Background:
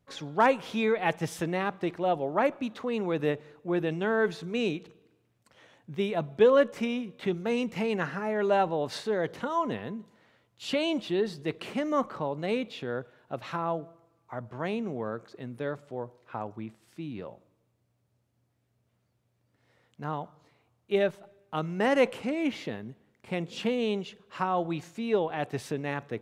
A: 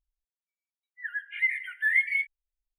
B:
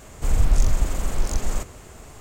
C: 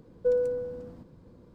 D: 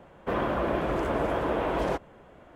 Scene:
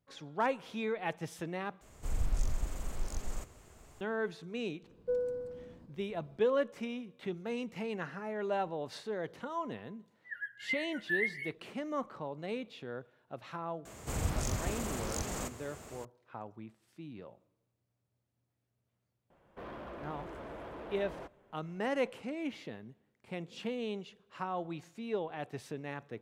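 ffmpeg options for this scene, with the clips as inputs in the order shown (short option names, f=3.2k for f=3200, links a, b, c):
-filter_complex "[2:a]asplit=2[a][b];[0:a]volume=-9dB[c];[1:a]asuperstop=centerf=2400:order=4:qfactor=3.5[d];[b]highpass=92[e];[4:a]asoftclip=type=tanh:threshold=-26dB[f];[c]asplit=2[g][h];[g]atrim=end=1.814[i];[a]atrim=end=2.2,asetpts=PTS-STARTPTS,volume=-14dB[j];[h]atrim=start=4.006[k];[3:a]atrim=end=1.54,asetpts=PTS-STARTPTS,volume=-8dB,afade=t=in:d=0.004:c=hsin,afade=t=out:st=1.536:d=0.004:c=hsin,adelay=4830[l];[d]atrim=end=2.78,asetpts=PTS-STARTPTS,volume=-7dB,afade=t=in:d=0.004:c=hsin,afade=t=out:st=2.776:d=0.004:c=hsin,adelay=9270[m];[e]atrim=end=2.2,asetpts=PTS-STARTPTS,volume=-5dB,afade=t=in:d=0.004:c=hsin,afade=t=out:st=2.196:d=0.004:c=hsin,adelay=13850[n];[f]atrim=end=2.55,asetpts=PTS-STARTPTS,volume=-14.5dB,afade=t=in:d=0.004:c=hsin,afade=t=out:st=2.546:d=0.004:c=hsin,adelay=19300[o];[i][j]acrossfade=d=0.004:c1=hsin:c2=hsin[p];[p][k]acrossfade=d=0.004:c1=hsin:c2=hsin[q];[q][l][m][n][o]amix=inputs=5:normalize=0"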